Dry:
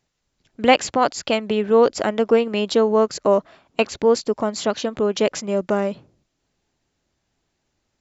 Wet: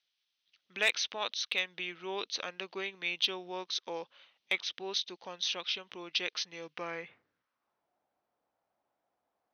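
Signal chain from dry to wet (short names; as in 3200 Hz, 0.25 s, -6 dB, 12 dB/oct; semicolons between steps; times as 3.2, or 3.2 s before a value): varispeed -16%; band-pass sweep 3400 Hz -> 790 Hz, 6.59–7.89; hard clip -19 dBFS, distortion -21 dB; gain +1 dB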